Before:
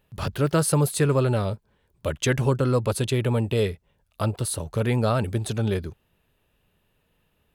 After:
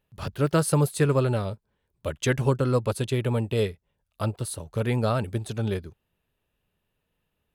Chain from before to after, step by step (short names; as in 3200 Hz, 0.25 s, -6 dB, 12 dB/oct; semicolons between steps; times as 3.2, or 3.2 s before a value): upward expander 1.5:1, over -35 dBFS